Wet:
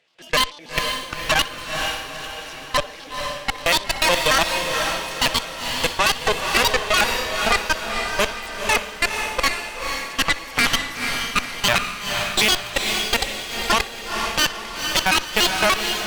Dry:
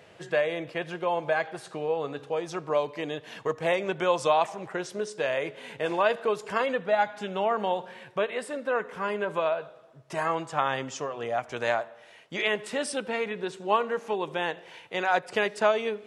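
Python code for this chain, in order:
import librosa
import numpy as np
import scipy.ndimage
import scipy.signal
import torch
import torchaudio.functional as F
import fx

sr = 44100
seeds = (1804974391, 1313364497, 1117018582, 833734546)

y = fx.pitch_trill(x, sr, semitones=9.5, every_ms=73)
y = fx.weighting(y, sr, curve='D')
y = fx.level_steps(y, sr, step_db=24)
y = fx.echo_feedback(y, sr, ms=62, feedback_pct=25, wet_db=-18.0)
y = fx.cheby_harmonics(y, sr, harmonics=(6,), levels_db=(-11,), full_scale_db=-13.0)
y = fx.echo_diffused(y, sr, ms=488, feedback_pct=45, wet_db=-4.0)
y = y * 10.0 ** (5.5 / 20.0)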